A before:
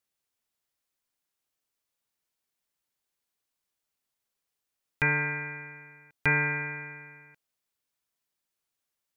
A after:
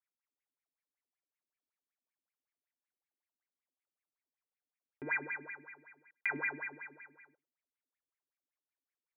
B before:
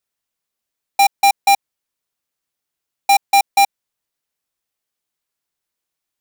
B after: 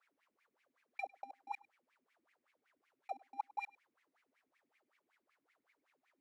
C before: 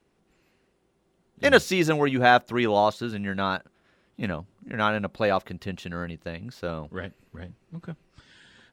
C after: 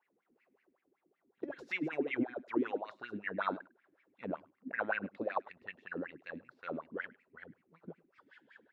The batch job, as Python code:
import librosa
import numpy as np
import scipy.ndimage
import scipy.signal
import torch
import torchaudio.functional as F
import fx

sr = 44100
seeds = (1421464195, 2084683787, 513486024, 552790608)

y = fx.over_compress(x, sr, threshold_db=-24.0, ratio=-0.5)
y = fx.wah_lfo(y, sr, hz=5.3, low_hz=250.0, high_hz=2300.0, q=8.5)
y = y + 10.0 ** (-23.5 / 20.0) * np.pad(y, (int(102 * sr / 1000.0), 0))[:len(y)]
y = y * 10.0 ** (2.5 / 20.0)